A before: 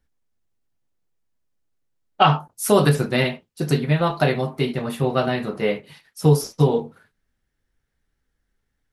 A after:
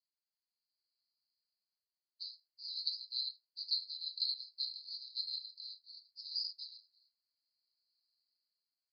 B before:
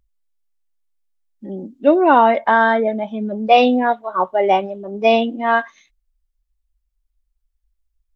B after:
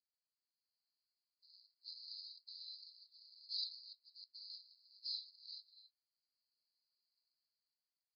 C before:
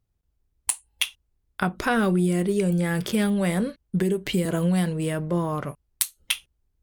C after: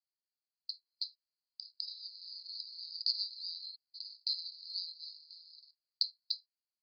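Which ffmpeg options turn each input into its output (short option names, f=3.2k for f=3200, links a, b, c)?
-af "acrusher=bits=7:mode=log:mix=0:aa=0.000001,dynaudnorm=f=170:g=9:m=13.5dB,asuperpass=centerf=4500:order=12:qfactor=4.8,volume=1.5dB"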